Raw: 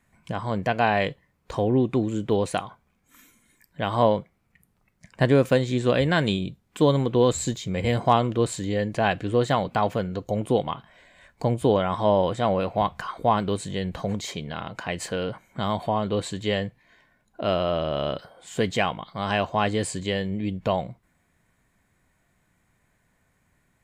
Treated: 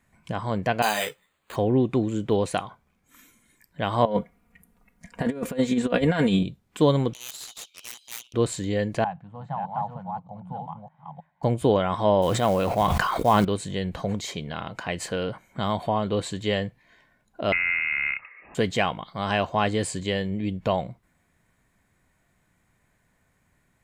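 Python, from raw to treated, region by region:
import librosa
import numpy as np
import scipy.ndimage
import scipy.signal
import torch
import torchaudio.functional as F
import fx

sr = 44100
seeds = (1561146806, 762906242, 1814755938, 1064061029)

y = fx.chain(x, sr, fx.riaa(side='recording'),
    fx.resample_bad(factor=8, down='none', up='hold'),
    fx.ensemble(), at=(0.82, 1.56))
y = fx.chain(y, sr, fx.comb(ms=4.2, depth=0.8),
    fx.over_compress(threshold_db=-22.0, ratio=-0.5),
    fx.peak_eq(hz=4600.0, db=-6.0, octaves=1.5), at=(4.05, 6.43))
y = fx.chain(y, sr, fx.steep_highpass(hz=2600.0, slope=96),
    fx.peak_eq(hz=7700.0, db=-13.0, octaves=0.26),
    fx.doppler_dist(depth_ms=0.97), at=(7.13, 8.34))
y = fx.chain(y, sr, fx.reverse_delay(ms=309, wet_db=-3.5),
    fx.double_bandpass(hz=370.0, octaves=2.4), at=(9.04, 11.43))
y = fx.chain(y, sr, fx.quant_companded(bits=6),
    fx.sustainer(db_per_s=20.0), at=(12.22, 13.45))
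y = fx.chain(y, sr, fx.peak_eq(hz=1300.0, db=-5.5, octaves=0.35),
    fx.freq_invert(carrier_hz=2700),
    fx.band_squash(depth_pct=40), at=(17.52, 18.55))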